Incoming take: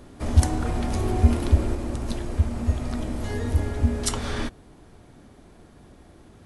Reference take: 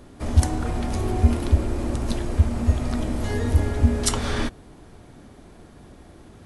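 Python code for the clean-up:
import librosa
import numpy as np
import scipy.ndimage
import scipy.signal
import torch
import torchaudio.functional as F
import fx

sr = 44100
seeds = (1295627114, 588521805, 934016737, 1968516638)

y = fx.fix_level(x, sr, at_s=1.75, step_db=3.5)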